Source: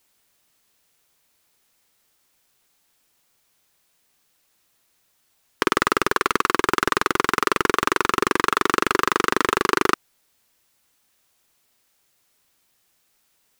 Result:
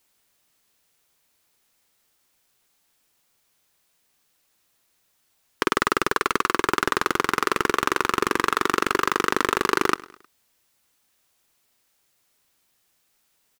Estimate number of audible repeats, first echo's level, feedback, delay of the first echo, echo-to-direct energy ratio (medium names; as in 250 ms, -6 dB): 3, -21.0 dB, 46%, 104 ms, -20.0 dB